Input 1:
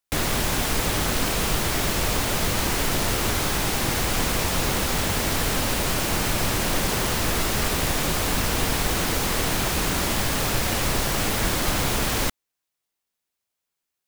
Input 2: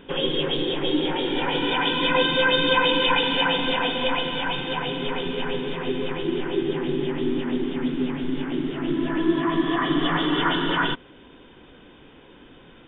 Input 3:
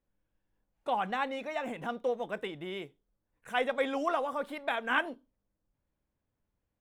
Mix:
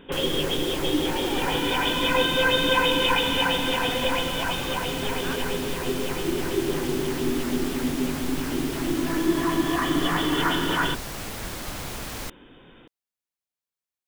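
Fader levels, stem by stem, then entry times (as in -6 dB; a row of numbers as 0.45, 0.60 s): -10.5, -1.5, -7.0 dB; 0.00, 0.00, 0.35 s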